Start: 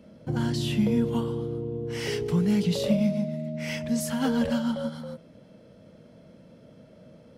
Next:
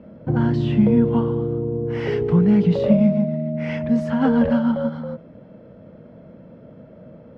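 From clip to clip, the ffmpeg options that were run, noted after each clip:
-af "lowpass=1.6k,volume=8dB"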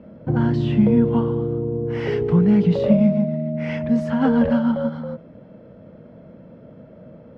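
-af anull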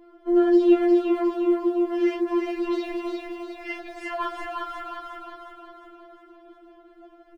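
-af "aphaser=in_gain=1:out_gain=1:delay=4.6:decay=0.54:speed=1.8:type=triangular,aecho=1:1:357|714|1071|1428|1785|2142|2499:0.708|0.361|0.184|0.0939|0.0479|0.0244|0.0125,afftfilt=real='re*4*eq(mod(b,16),0)':imag='im*4*eq(mod(b,16),0)':win_size=2048:overlap=0.75"

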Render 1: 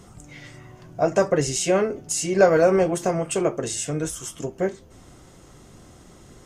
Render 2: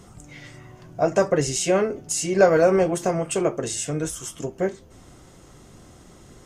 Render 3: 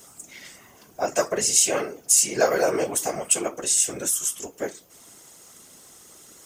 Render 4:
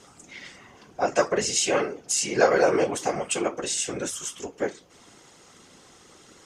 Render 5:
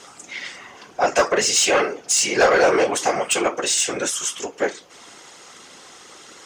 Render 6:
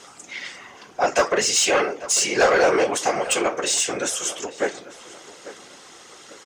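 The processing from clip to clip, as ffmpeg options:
-af anull
-af "afftfilt=real='hypot(re,im)*cos(2*PI*random(0))':imag='hypot(re,im)*sin(2*PI*random(1))':win_size=512:overlap=0.75,aemphasis=mode=production:type=riaa,volume=3dB"
-af "lowpass=4.4k,bandreject=f=640:w=12,volume=2.5dB"
-filter_complex "[0:a]asplit=2[a][b];[b]highpass=f=720:p=1,volume=16dB,asoftclip=type=tanh:threshold=-6dB[c];[a][c]amix=inputs=2:normalize=0,lowpass=f=7.8k:p=1,volume=-6dB"
-filter_complex "[0:a]asplit=2[a][b];[b]adelay=845,lowpass=f=2.8k:p=1,volume=-15.5dB,asplit=2[c][d];[d]adelay=845,lowpass=f=2.8k:p=1,volume=0.33,asplit=2[e][f];[f]adelay=845,lowpass=f=2.8k:p=1,volume=0.33[g];[a][c][e][g]amix=inputs=4:normalize=0,volume=-1.5dB"

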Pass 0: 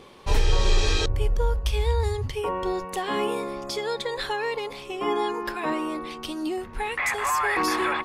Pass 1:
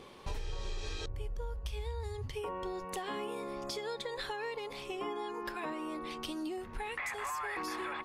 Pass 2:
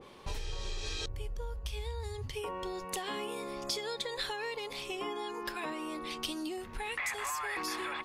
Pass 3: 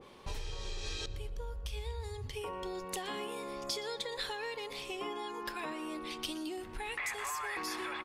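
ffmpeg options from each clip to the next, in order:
-af "acompressor=threshold=-32dB:ratio=6,volume=-4dB"
-af "adynamicequalizer=threshold=0.002:dfrequency=2200:dqfactor=0.7:tfrequency=2200:tqfactor=0.7:attack=5:release=100:ratio=0.375:range=3.5:mode=boostabove:tftype=highshelf"
-filter_complex "[0:a]asplit=2[a][b];[b]adelay=119,lowpass=f=4.2k:p=1,volume=-15dB,asplit=2[c][d];[d]adelay=119,lowpass=f=4.2k:p=1,volume=0.49,asplit=2[e][f];[f]adelay=119,lowpass=f=4.2k:p=1,volume=0.49,asplit=2[g][h];[h]adelay=119,lowpass=f=4.2k:p=1,volume=0.49,asplit=2[i][j];[j]adelay=119,lowpass=f=4.2k:p=1,volume=0.49[k];[a][c][e][g][i][k]amix=inputs=6:normalize=0,volume=-2dB"

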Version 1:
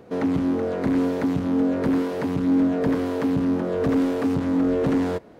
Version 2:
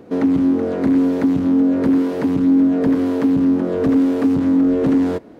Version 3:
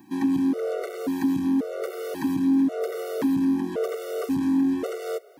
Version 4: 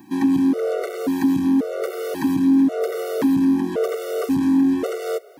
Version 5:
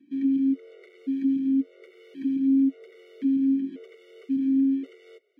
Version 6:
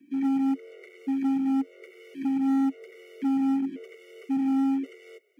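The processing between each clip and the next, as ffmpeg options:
-af "equalizer=f=280:w=1.7:g=8,acompressor=threshold=-16dB:ratio=2,volume=2dB"
-af "aemphasis=mode=production:type=bsi,afftfilt=real='re*gt(sin(2*PI*0.93*pts/sr)*(1-2*mod(floor(b*sr/1024/380),2)),0)':imag='im*gt(sin(2*PI*0.93*pts/sr)*(1-2*mod(floor(b*sr/1024/380),2)),0)':win_size=1024:overlap=0.75,volume=-2.5dB"
-af "acontrast=29"
-filter_complex "[0:a]asplit=3[a][b][c];[a]bandpass=f=270:t=q:w=8,volume=0dB[d];[b]bandpass=f=2.29k:t=q:w=8,volume=-6dB[e];[c]bandpass=f=3.01k:t=q:w=8,volume=-9dB[f];[d][e][f]amix=inputs=3:normalize=0,volume=-5dB"
-filter_complex "[0:a]acrossover=split=210|980[a][b][c];[b]asoftclip=type=hard:threshold=-28.5dB[d];[a][d][c]amix=inputs=3:normalize=0,aexciter=amount=1.4:drive=3.6:freq=2k,volume=1.5dB"

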